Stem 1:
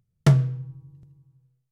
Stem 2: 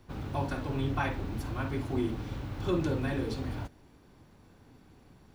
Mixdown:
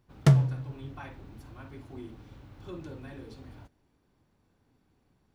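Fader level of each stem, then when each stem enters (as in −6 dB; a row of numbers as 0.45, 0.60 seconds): −2.5, −12.5 decibels; 0.00, 0.00 seconds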